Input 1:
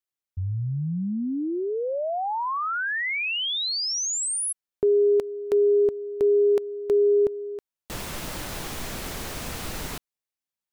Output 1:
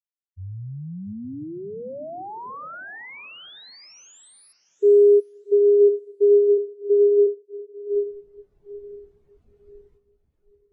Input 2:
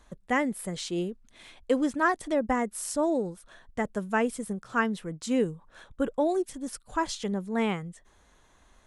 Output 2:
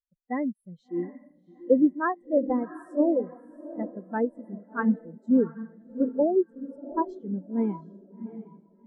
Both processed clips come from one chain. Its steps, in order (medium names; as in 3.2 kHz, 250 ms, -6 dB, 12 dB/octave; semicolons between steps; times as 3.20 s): echo that smears into a reverb 715 ms, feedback 59%, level -4 dB; spectral contrast expander 2.5:1; trim +2.5 dB